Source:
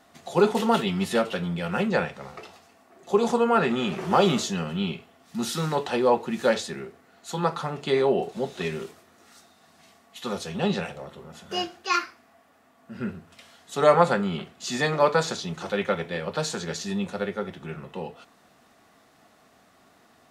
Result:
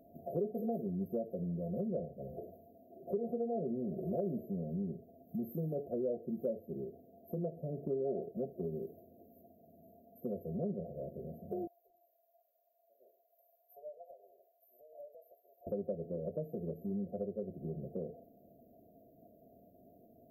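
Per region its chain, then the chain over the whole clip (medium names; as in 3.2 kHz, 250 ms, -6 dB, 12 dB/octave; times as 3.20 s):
11.67–15.67 s: inverse Chebyshev high-pass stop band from 200 Hz, stop band 70 dB + compression 4:1, threshold -36 dBFS
whole clip: FFT band-reject 720–12000 Hz; compression 3:1, threshold -38 dBFS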